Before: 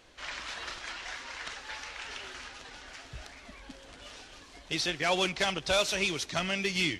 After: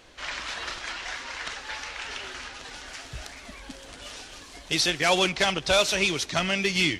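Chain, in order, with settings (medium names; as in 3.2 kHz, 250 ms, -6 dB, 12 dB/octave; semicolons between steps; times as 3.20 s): 2.63–5.19 s: treble shelf 7.3 kHz +9 dB; trim +5.5 dB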